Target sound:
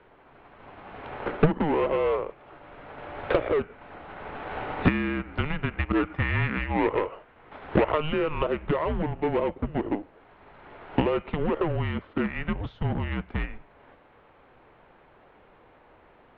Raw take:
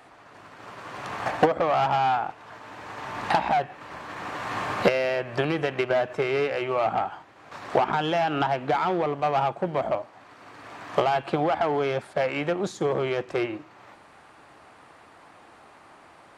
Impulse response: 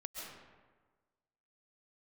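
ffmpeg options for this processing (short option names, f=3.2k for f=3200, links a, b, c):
-filter_complex "[0:a]asettb=1/sr,asplit=3[a][b][c];[a]atrim=end=5.924[d];[b]atrim=start=5.92:end=7.98,asetpts=PTS-STARTPTS,afade=t=in:d=0.004:c=qsin,afade=t=out:st=2.056:d=0.004:c=qsin,adynamicequalizer=threshold=0.00891:dfrequency=2100:dqfactor=0.79:tfrequency=2100:tqfactor=0.79:attack=5:release=100:ratio=0.375:range=2.5:mode=boostabove:tftype=bell[e];[c]atrim=start=7.976[f];[d][e]acrossfade=d=0.004:c1=hsin:c2=qsin[g];[g][f]acrossfade=d=0.004:c1=qsin:c2=hsin,aeval=exprs='0.376*(cos(1*acos(clip(val(0)/0.376,-1,1)))-cos(1*PI/2))+0.0211*(cos(7*acos(clip(val(0)/0.376,-1,1)))-cos(7*PI/2))':c=same,highpass=f=170:t=q:w=0.5412,highpass=f=170:t=q:w=1.307,lowpass=f=3.6k:t=q:w=0.5176,lowpass=f=3.6k:t=q:w=0.7071,lowpass=f=3.6k:t=q:w=1.932,afreqshift=-310"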